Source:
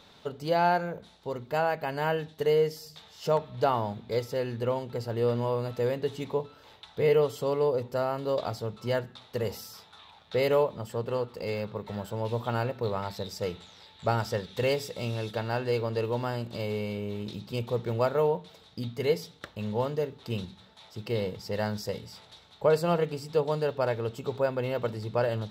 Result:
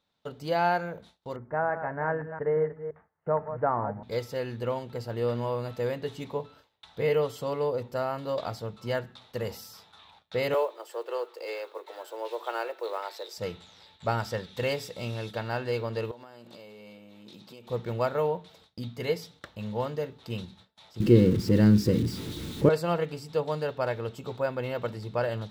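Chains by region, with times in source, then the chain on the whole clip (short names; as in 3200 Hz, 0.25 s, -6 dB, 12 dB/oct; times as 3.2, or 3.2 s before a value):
1.36–4.03 reverse delay 0.172 s, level -10 dB + steep low-pass 1900 Hz 48 dB/oct
10.54–13.38 block floating point 7-bit + steep high-pass 320 Hz 72 dB/oct
16.11–17.7 HPF 240 Hz + compressor 8:1, threshold -41 dBFS
21–22.69 zero-crossing step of -37 dBFS + resonant low shelf 480 Hz +13 dB, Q 3
whole clip: gate with hold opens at -42 dBFS; notch 410 Hz, Q 12; dynamic EQ 1700 Hz, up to +3 dB, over -42 dBFS, Q 0.88; gain -2 dB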